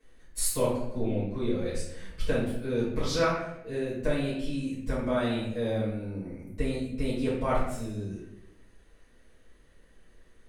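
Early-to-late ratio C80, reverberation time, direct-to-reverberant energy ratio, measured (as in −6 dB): 5.0 dB, 0.80 s, −11.5 dB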